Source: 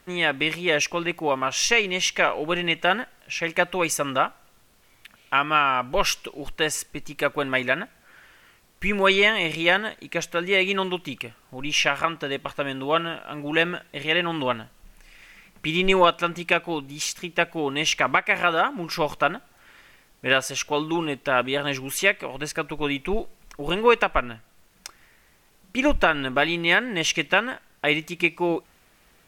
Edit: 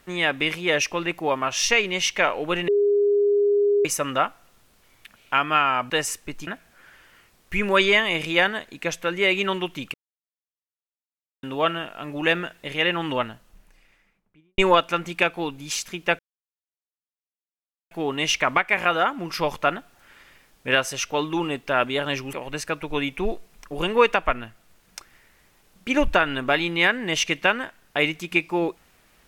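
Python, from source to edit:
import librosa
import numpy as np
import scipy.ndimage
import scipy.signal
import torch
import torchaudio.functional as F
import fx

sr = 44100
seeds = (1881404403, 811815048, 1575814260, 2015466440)

y = fx.studio_fade_out(x, sr, start_s=14.39, length_s=1.49)
y = fx.edit(y, sr, fx.bleep(start_s=2.68, length_s=1.17, hz=408.0, db=-16.0),
    fx.cut(start_s=5.9, length_s=0.67),
    fx.cut(start_s=7.14, length_s=0.63),
    fx.silence(start_s=11.24, length_s=1.49),
    fx.insert_silence(at_s=17.49, length_s=1.72),
    fx.cut(start_s=21.91, length_s=0.3), tone=tone)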